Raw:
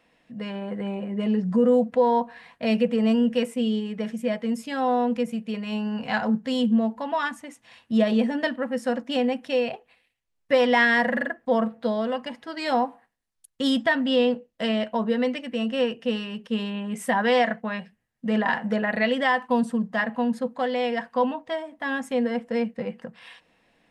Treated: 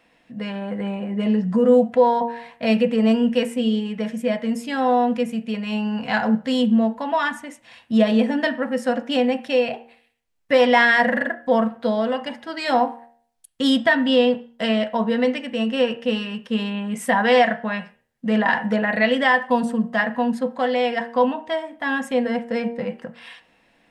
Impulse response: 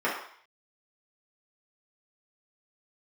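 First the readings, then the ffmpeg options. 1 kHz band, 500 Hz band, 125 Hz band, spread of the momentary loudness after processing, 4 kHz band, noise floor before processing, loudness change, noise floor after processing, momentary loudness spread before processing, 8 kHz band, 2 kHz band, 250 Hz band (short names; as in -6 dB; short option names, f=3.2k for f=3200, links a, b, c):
+4.5 dB, +4.0 dB, n/a, 11 LU, +4.5 dB, -74 dBFS, +4.0 dB, -61 dBFS, 10 LU, +4.0 dB, +4.5 dB, +3.5 dB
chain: -filter_complex "[0:a]bandreject=f=78.16:t=h:w=4,bandreject=f=156.32:t=h:w=4,bandreject=f=234.48:t=h:w=4,bandreject=f=312.64:t=h:w=4,bandreject=f=390.8:t=h:w=4,bandreject=f=468.96:t=h:w=4,bandreject=f=547.12:t=h:w=4,bandreject=f=625.28:t=h:w=4,bandreject=f=703.44:t=h:w=4,bandreject=f=781.6:t=h:w=4,bandreject=f=859.76:t=h:w=4,bandreject=f=937.92:t=h:w=4,asplit=2[a][b];[1:a]atrim=start_sample=2205,asetrate=66150,aresample=44100[c];[b][c]afir=irnorm=-1:irlink=0,volume=-19dB[d];[a][d]amix=inputs=2:normalize=0,volume=3.5dB"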